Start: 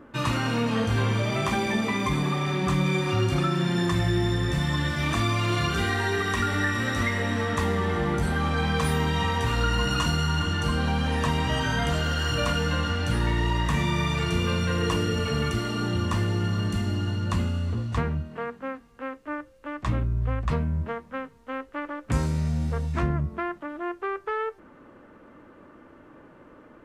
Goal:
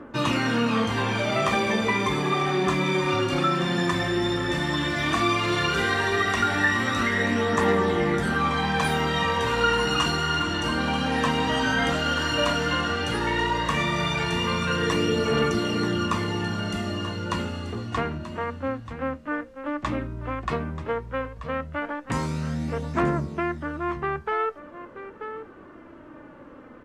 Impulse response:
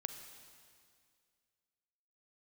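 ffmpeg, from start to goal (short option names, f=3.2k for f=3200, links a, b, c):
-filter_complex "[0:a]highshelf=f=8.5k:g=-9.5,aecho=1:1:934:0.224,acrossover=split=190[a][b];[a]acompressor=threshold=-41dB:ratio=4[c];[b]aphaser=in_gain=1:out_gain=1:delay=4.1:decay=0.36:speed=0.13:type=triangular[d];[c][d]amix=inputs=2:normalize=0,volume=3.5dB"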